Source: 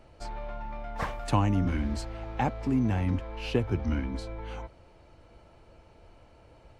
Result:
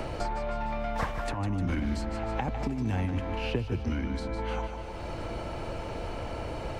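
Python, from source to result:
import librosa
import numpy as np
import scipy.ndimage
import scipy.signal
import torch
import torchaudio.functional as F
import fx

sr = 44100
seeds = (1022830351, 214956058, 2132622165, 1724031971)

y = fx.over_compress(x, sr, threshold_db=-28.0, ratio=-0.5, at=(1.02, 3.38))
y = fx.echo_feedback(y, sr, ms=150, feedback_pct=37, wet_db=-10.0)
y = fx.band_squash(y, sr, depth_pct=100)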